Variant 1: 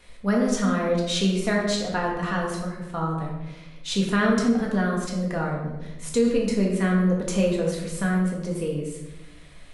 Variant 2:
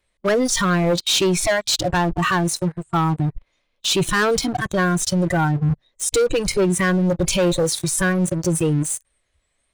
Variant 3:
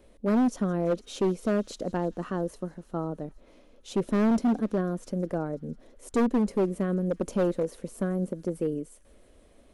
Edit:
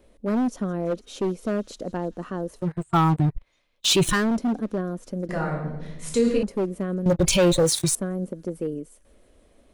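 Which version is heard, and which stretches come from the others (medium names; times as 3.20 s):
3
2.66–4.18 s: from 2, crossfade 0.16 s
5.29–6.43 s: from 1
7.06–7.95 s: from 2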